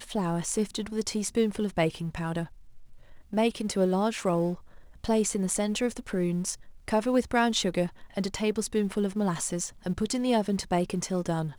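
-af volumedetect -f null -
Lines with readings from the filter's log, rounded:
mean_volume: -28.6 dB
max_volume: -11.8 dB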